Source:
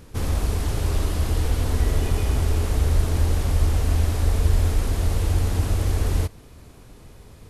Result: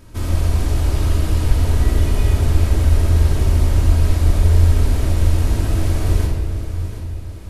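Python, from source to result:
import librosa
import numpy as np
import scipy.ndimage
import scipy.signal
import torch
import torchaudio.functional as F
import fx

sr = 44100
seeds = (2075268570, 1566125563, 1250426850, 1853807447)

y = fx.echo_feedback(x, sr, ms=733, feedback_pct=43, wet_db=-12)
y = fx.room_shoebox(y, sr, seeds[0], volume_m3=2300.0, walls='mixed', distance_m=2.8)
y = y * librosa.db_to_amplitude(-1.5)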